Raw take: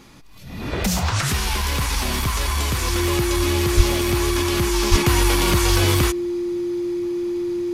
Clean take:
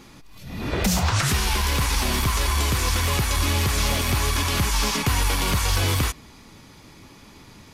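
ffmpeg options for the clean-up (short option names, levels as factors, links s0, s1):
-filter_complex "[0:a]bandreject=f=350:w=30,asplit=3[s0][s1][s2];[s0]afade=t=out:st=3.76:d=0.02[s3];[s1]highpass=f=140:w=0.5412,highpass=f=140:w=1.3066,afade=t=in:st=3.76:d=0.02,afade=t=out:st=3.88:d=0.02[s4];[s2]afade=t=in:st=3.88:d=0.02[s5];[s3][s4][s5]amix=inputs=3:normalize=0,asplit=3[s6][s7][s8];[s6]afade=t=out:st=4.9:d=0.02[s9];[s7]highpass=f=140:w=0.5412,highpass=f=140:w=1.3066,afade=t=in:st=4.9:d=0.02,afade=t=out:st=5.02:d=0.02[s10];[s8]afade=t=in:st=5.02:d=0.02[s11];[s9][s10][s11]amix=inputs=3:normalize=0,asetnsamples=n=441:p=0,asendcmd='4.92 volume volume -3.5dB',volume=1"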